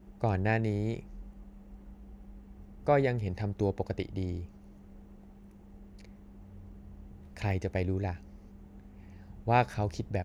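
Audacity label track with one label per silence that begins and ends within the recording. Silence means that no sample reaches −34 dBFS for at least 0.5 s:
0.990000	2.870000	silence
4.430000	7.370000	silence
8.140000	9.470000	silence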